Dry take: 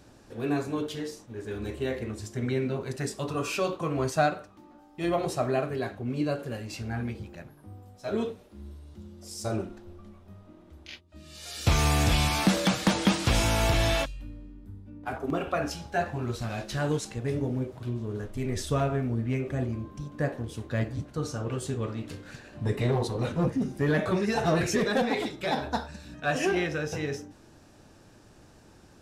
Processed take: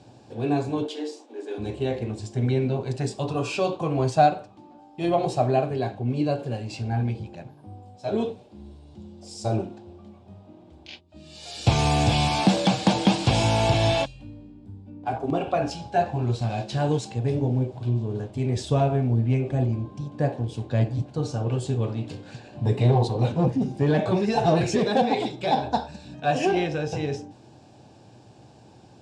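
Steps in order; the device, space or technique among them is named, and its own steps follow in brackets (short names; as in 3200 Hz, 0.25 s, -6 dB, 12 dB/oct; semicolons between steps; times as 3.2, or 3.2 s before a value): 0.85–1.58 steep high-pass 250 Hz 96 dB/oct; car door speaker (speaker cabinet 99–7700 Hz, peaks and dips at 120 Hz +8 dB, 780 Hz +7 dB, 1300 Hz -10 dB, 1900 Hz -9 dB, 6100 Hz -6 dB); gain +3.5 dB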